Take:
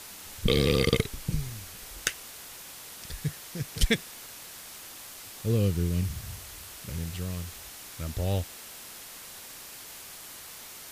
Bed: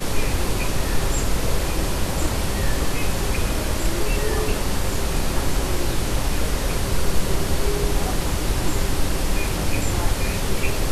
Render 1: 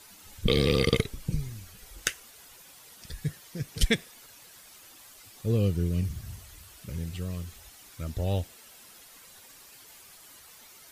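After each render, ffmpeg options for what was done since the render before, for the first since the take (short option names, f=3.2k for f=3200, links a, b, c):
-af "afftdn=nr=10:nf=-45"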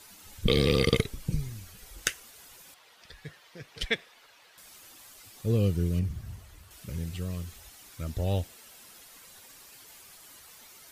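-filter_complex "[0:a]asettb=1/sr,asplit=3[a][b][c];[a]atrim=end=2.744[d];[b]atrim=start=2.74:end=4.58,asetpts=PTS-STARTPTS,afade=t=in:d=0.004:c=qsin,afade=t=out:st=1.836:d=0.004:c=qsin,acrossover=split=420 4400:gain=0.2 1 0.158[e][f][g];[e][f][g]amix=inputs=3:normalize=0[h];[c]atrim=start=4.576[i];[d][h]acrossfade=d=0.004:c1=hsin:c2=qsin[j];[j][i]acrossfade=d=0.004:c1=qsin:c2=hsin,asettb=1/sr,asplit=3[k][l][m];[k]atrim=end=5.994[n];[l]atrim=start=5.99:end=6.71,asetpts=PTS-STARTPTS,afade=t=in:d=0.004:c=qsin,afade=t=out:st=0.716:d=0.004:c=qsin,highshelf=f=2.8k:g=-9[o];[m]atrim=start=6.706[p];[n][o]acrossfade=d=0.004:c1=hsin:c2=qsin[q];[q][p]acrossfade=d=0.004:c1=qsin:c2=hsin"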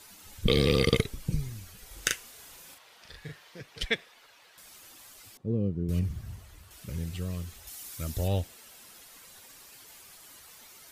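-filter_complex "[0:a]asettb=1/sr,asplit=3[a][b][c];[a]atrim=end=1.874[d];[b]atrim=start=1.87:end=3.61,asetpts=PTS-STARTPTS,afade=t=in:d=0.004:c=qsin,afade=t=out:st=1.736:d=0.004:c=qsin,asplit=2[e][f];[f]adelay=39,volume=-3dB[g];[e][g]amix=inputs=2:normalize=0,atrim=end_sample=76734[h];[c]atrim=start=3.606[i];[d][h]acrossfade=d=0.004:c1=hsin:c2=qsin[j];[j][i]acrossfade=d=0.004:c1=qsin:c2=hsin,asettb=1/sr,asplit=3[k][l][m];[k]atrim=end=5.374[n];[l]atrim=start=5.37:end=5.89,asetpts=PTS-STARTPTS,afade=t=in:d=0.004:c=qsin,afade=t=out:st=0.516:d=0.004:c=qsin,bandpass=f=240:t=q:w=0.97[o];[m]atrim=start=5.886[p];[n][o]acrossfade=d=0.004:c1=hsin:c2=qsin[q];[q][p]acrossfade=d=0.004:c1=qsin:c2=hsin,asettb=1/sr,asplit=3[r][s][t];[r]atrim=end=7.674[u];[s]atrim=start=7.67:end=8.28,asetpts=PTS-STARTPTS,afade=t=in:d=0.004:c=qsin,afade=t=out:st=0.606:d=0.004:c=qsin,highshelf=f=4.8k:g=11[v];[t]atrim=start=8.276[w];[u][v]acrossfade=d=0.004:c1=hsin:c2=qsin[x];[x][w]acrossfade=d=0.004:c1=qsin:c2=hsin"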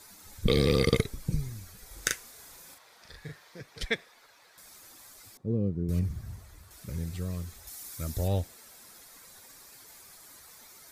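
-af "equalizer=f=2.9k:w=4.1:g=-10"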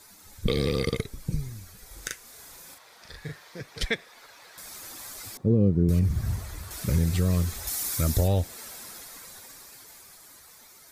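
-af "dynaudnorm=f=230:g=21:m=16.5dB,alimiter=limit=-13dB:level=0:latency=1:release=264"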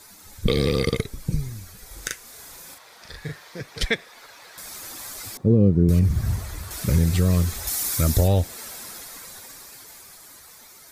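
-af "volume=4.5dB"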